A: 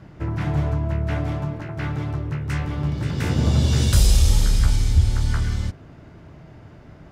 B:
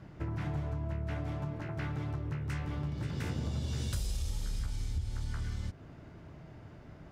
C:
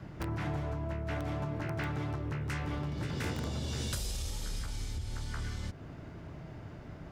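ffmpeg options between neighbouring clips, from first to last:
ffmpeg -i in.wav -af "acompressor=threshold=-26dB:ratio=5,volume=-6.5dB" out.wav
ffmpeg -i in.wav -filter_complex "[0:a]acrossover=split=250|620|5000[link_01][link_02][link_03][link_04];[link_01]alimiter=level_in=12.5dB:limit=-24dB:level=0:latency=1:release=73,volume=-12.5dB[link_05];[link_02]aeval=exprs='(mod(84.1*val(0)+1,2)-1)/84.1':channel_layout=same[link_06];[link_05][link_06][link_03][link_04]amix=inputs=4:normalize=0,volume=4.5dB" out.wav

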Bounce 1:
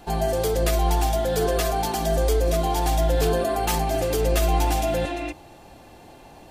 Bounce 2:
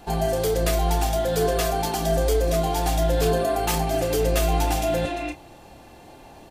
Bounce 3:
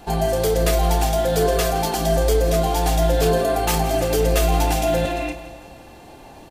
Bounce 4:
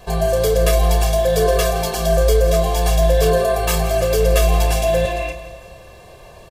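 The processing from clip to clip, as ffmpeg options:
ffmpeg -i in.wav -filter_complex "[0:a]asplit=2[link_01][link_02];[link_02]adelay=30,volume=-9dB[link_03];[link_01][link_03]amix=inputs=2:normalize=0" out.wav
ffmpeg -i in.wav -af "aecho=1:1:167|334|501|668|835:0.2|0.108|0.0582|0.0314|0.017,volume=3dB" out.wav
ffmpeg -i in.wav -af "aecho=1:1:1.8:0.94,volume=-1dB" out.wav

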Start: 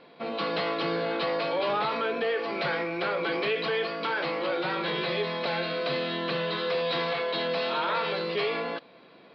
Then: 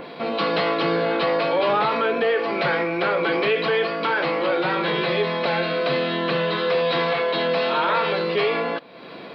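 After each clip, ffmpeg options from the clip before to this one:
ffmpeg -i in.wav -af "adynamicequalizer=threshold=0.00355:dfrequency=4800:dqfactor=1.1:tfrequency=4800:tqfactor=1.1:attack=5:release=100:ratio=0.375:range=2.5:mode=cutabove:tftype=bell,acompressor=mode=upward:threshold=-36dB:ratio=2.5,volume=7.5dB" out.wav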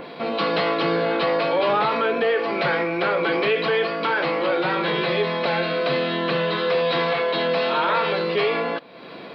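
ffmpeg -i in.wav -af anull out.wav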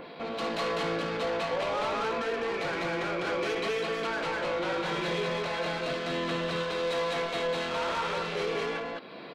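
ffmpeg -i in.wav -af "asoftclip=type=tanh:threshold=-23dB,aecho=1:1:58.31|201.2:0.251|0.891,volume=-7dB" out.wav

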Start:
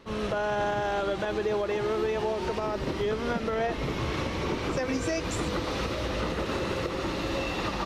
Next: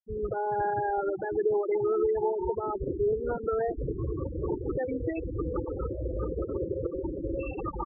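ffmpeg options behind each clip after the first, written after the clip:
ffmpeg -i in.wav -af "afftfilt=real='re*gte(hypot(re,im),0.1)':imag='im*gte(hypot(re,im),0.1)':win_size=1024:overlap=0.75,aecho=1:1:2.4:0.6,volume=-1dB" out.wav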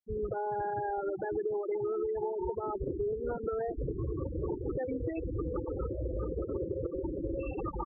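ffmpeg -i in.wav -af "acompressor=threshold=-30dB:ratio=6,highshelf=frequency=2100:gain=-6.5" out.wav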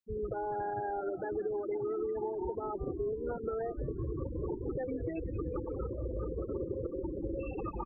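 ffmpeg -i in.wav -filter_complex "[0:a]asplit=4[link_01][link_02][link_03][link_04];[link_02]adelay=183,afreqshift=-100,volume=-14dB[link_05];[link_03]adelay=366,afreqshift=-200,volume=-22.9dB[link_06];[link_04]adelay=549,afreqshift=-300,volume=-31.7dB[link_07];[link_01][link_05][link_06][link_07]amix=inputs=4:normalize=0,volume=-2dB" out.wav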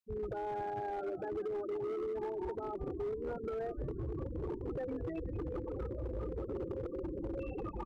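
ffmpeg -i in.wav -filter_complex "[0:a]acrossover=split=1200[link_01][link_02];[link_02]alimiter=level_in=23.5dB:limit=-24dB:level=0:latency=1:release=183,volume=-23.5dB[link_03];[link_01][link_03]amix=inputs=2:normalize=0,volume=31.5dB,asoftclip=hard,volume=-31.5dB,volume=-2dB" out.wav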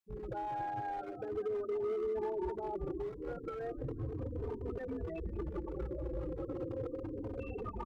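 ffmpeg -i in.wav -filter_complex "[0:a]asplit=2[link_01][link_02];[link_02]adelay=3.1,afreqshift=-0.34[link_03];[link_01][link_03]amix=inputs=2:normalize=1,volume=3dB" out.wav

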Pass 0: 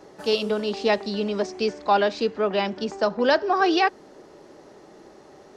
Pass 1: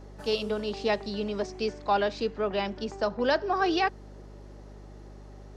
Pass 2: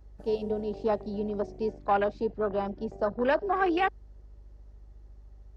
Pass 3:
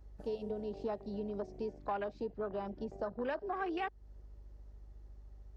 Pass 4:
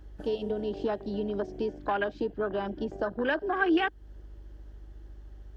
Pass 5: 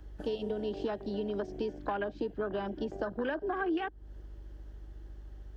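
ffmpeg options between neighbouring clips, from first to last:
ffmpeg -i in.wav -af "aeval=exprs='val(0)+0.01*(sin(2*PI*50*n/s)+sin(2*PI*2*50*n/s)/2+sin(2*PI*3*50*n/s)/3+sin(2*PI*4*50*n/s)/4+sin(2*PI*5*50*n/s)/5)':channel_layout=same,volume=-5.5dB" out.wav
ffmpeg -i in.wav -af "afwtdn=0.0282" out.wav
ffmpeg -i in.wav -af "acompressor=threshold=-35dB:ratio=2.5,volume=-3dB" out.wav
ffmpeg -i in.wav -af "equalizer=frequency=315:width_type=o:width=0.33:gain=10,equalizer=frequency=1600:width_type=o:width=0.33:gain=10,equalizer=frequency=3150:width_type=o:width=0.33:gain=11,volume=6.5dB" out.wav
ffmpeg -i in.wav -filter_complex "[0:a]acrossover=split=260|1300[link_01][link_02][link_03];[link_01]acompressor=threshold=-40dB:ratio=4[link_04];[link_02]acompressor=threshold=-33dB:ratio=4[link_05];[link_03]acompressor=threshold=-45dB:ratio=4[link_06];[link_04][link_05][link_06]amix=inputs=3:normalize=0" out.wav

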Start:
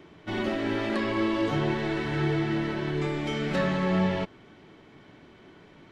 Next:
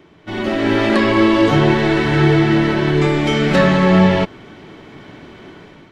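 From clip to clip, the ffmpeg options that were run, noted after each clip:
ffmpeg -i in.wav -af "dynaudnorm=framelen=210:gausssize=5:maxgain=11dB,volume=3dB" out.wav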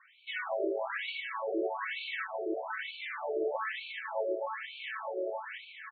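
ffmpeg -i in.wav -filter_complex "[0:a]asplit=2[link_01][link_02];[link_02]adelay=666,lowpass=frequency=4700:poles=1,volume=-8dB,asplit=2[link_03][link_04];[link_04]adelay=666,lowpass=frequency=4700:poles=1,volume=0.54,asplit=2[link_05][link_06];[link_06]adelay=666,lowpass=frequency=4700:poles=1,volume=0.54,asplit=2[link_07][link_08];[link_08]adelay=666,lowpass=frequency=4700:poles=1,volume=0.54,asplit=2[link_09][link_10];[link_10]adelay=666,lowpass=frequency=4700:poles=1,volume=0.54,asplit=2[link_11][link_12];[link_12]adelay=666,lowpass=frequency=4700:poles=1,volume=0.54[link_13];[link_01][link_03][link_05][link_07][link_09][link_11][link_13]amix=inputs=7:normalize=0,acompressor=threshold=-21dB:ratio=6,afftfilt=real='re*between(b*sr/1024,470*pow(3200/470,0.5+0.5*sin(2*PI*1.1*pts/sr))/1.41,470*pow(3200/470,0.5+0.5*sin(2*PI*1.1*pts/sr))*1.41)':imag='im*between(b*sr/1024,470*pow(3200/470,0.5+0.5*sin(2*PI*1.1*pts/sr))/1.41,470*pow(3200/470,0.5+0.5*sin(2*PI*1.1*pts/sr))*1.41)':win_size=1024:overlap=0.75,volume=-2dB" out.wav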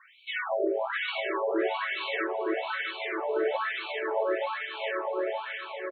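ffmpeg -i in.wav -af "aecho=1:1:661|1322|1983:0.501|0.0752|0.0113,volume=4.5dB" out.wav

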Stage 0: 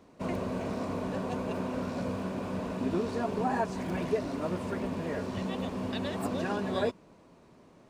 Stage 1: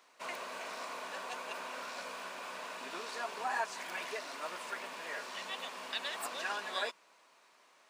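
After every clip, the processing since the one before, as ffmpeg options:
ffmpeg -i in.wav -af "highpass=1300,volume=4dB" out.wav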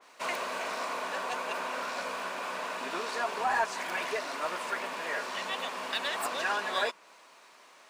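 ffmpeg -i in.wav -filter_complex "[0:a]asplit=2[link_01][link_02];[link_02]aeval=exprs='0.0178*(abs(mod(val(0)/0.0178+3,4)-2)-1)':channel_layout=same,volume=-11dB[link_03];[link_01][link_03]amix=inputs=2:normalize=0,adynamicequalizer=threshold=0.00447:dfrequency=2300:dqfactor=0.7:tfrequency=2300:tqfactor=0.7:attack=5:release=100:ratio=0.375:range=2:mode=cutabove:tftype=highshelf,volume=6.5dB" out.wav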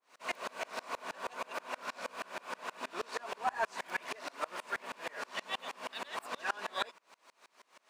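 ffmpeg -i in.wav -af "aeval=exprs='val(0)*pow(10,-30*if(lt(mod(-6.3*n/s,1),2*abs(-6.3)/1000),1-mod(-6.3*n/s,1)/(2*abs(-6.3)/1000),(mod(-6.3*n/s,1)-2*abs(-6.3)/1000)/(1-2*abs(-6.3)/1000))/20)':channel_layout=same,volume=1.5dB" out.wav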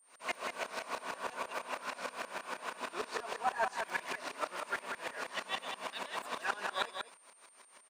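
ffmpeg -i in.wav -af "aeval=exprs='val(0)+0.000631*sin(2*PI*8900*n/s)':channel_layout=same,aecho=1:1:189:0.473" out.wav

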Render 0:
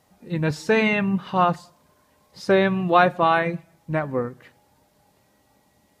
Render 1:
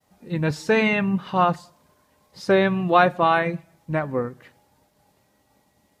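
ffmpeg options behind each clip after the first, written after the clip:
ffmpeg -i in.wav -af "agate=range=-33dB:threshold=-59dB:ratio=3:detection=peak" out.wav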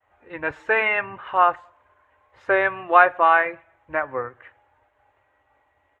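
ffmpeg -i in.wav -af "firequalizer=gain_entry='entry(100,0);entry(170,-27);entry(290,-6);entry(580,2);entry(1000,6);entry(1600,9);entry(2900,0);entry(4800,-26);entry(6900,-17);entry(10000,-26)':delay=0.05:min_phase=1,volume=-2.5dB" out.wav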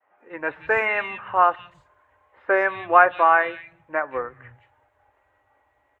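ffmpeg -i in.wav -filter_complex "[0:a]acrossover=split=160|2900[link_01][link_02][link_03];[link_03]adelay=180[link_04];[link_01]adelay=260[link_05];[link_05][link_02][link_04]amix=inputs=3:normalize=0" out.wav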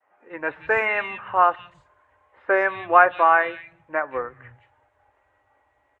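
ffmpeg -i in.wav -af "aresample=22050,aresample=44100" out.wav

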